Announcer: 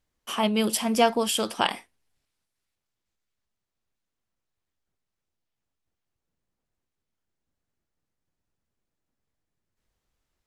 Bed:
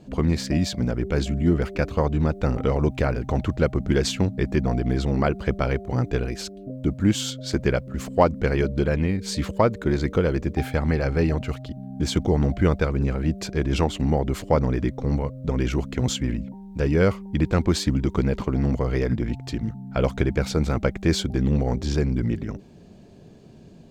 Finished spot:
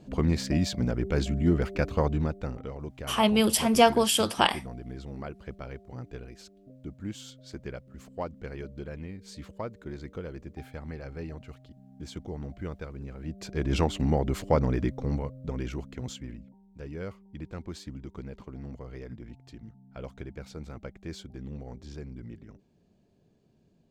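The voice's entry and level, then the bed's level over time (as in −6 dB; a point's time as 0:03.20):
2.80 s, +1.5 dB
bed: 0:02.10 −3.5 dB
0:02.72 −17 dB
0:13.13 −17 dB
0:13.70 −3.5 dB
0:14.81 −3.5 dB
0:16.67 −18.5 dB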